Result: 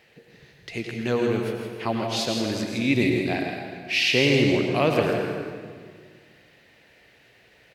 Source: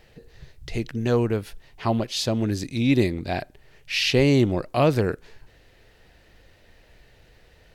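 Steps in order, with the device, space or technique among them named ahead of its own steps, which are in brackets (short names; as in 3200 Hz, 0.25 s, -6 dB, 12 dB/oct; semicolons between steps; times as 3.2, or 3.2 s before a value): PA in a hall (HPF 150 Hz 12 dB/oct; bell 2300 Hz +6.5 dB 0.93 oct; echo 0.163 s -7.5 dB; reverb RT60 1.8 s, pre-delay 86 ms, DRR 2.5 dB); gain -3 dB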